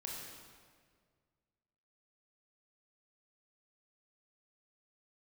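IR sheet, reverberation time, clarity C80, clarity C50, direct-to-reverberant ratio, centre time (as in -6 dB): 1.8 s, 1.5 dB, 0.0 dB, -3.0 dB, 96 ms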